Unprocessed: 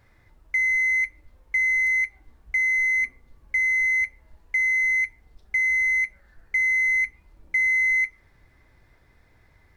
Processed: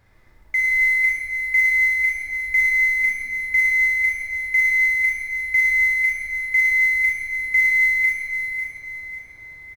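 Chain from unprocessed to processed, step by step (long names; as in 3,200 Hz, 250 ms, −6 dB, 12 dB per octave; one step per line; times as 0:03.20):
in parallel at −11 dB: slack as between gear wheels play −27.5 dBFS
on the sum: repeating echo 548 ms, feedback 45%, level −9 dB
four-comb reverb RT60 2 s, DRR −2 dB
noise that follows the level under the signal 29 dB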